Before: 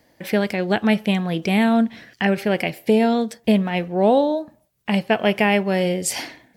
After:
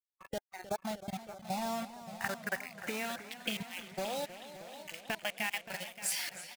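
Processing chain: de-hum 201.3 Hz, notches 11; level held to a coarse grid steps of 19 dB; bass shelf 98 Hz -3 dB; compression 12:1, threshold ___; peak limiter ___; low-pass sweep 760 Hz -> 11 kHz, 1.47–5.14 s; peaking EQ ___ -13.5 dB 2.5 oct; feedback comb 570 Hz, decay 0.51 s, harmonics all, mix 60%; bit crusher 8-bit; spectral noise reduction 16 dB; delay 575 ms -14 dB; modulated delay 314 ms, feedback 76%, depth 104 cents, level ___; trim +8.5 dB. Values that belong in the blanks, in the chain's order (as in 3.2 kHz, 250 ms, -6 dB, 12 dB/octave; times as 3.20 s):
-27 dBFS, -17 dBFS, 300 Hz, -14 dB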